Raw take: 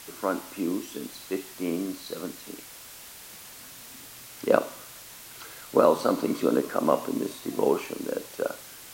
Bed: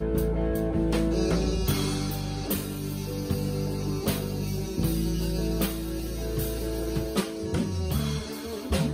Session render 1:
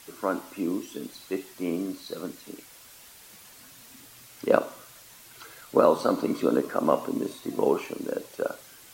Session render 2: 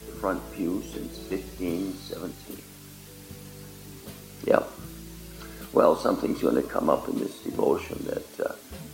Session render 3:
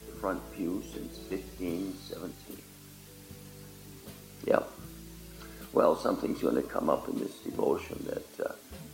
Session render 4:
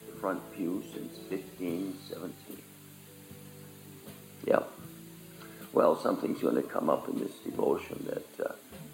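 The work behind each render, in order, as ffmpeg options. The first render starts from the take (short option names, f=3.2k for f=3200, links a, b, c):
-af "afftdn=nr=6:nf=-46"
-filter_complex "[1:a]volume=-16dB[a];[0:a][a]amix=inputs=2:normalize=0"
-af "volume=-5dB"
-af "highpass=f=99:w=0.5412,highpass=f=99:w=1.3066,equalizer=f=5.5k:w=4.9:g=-15"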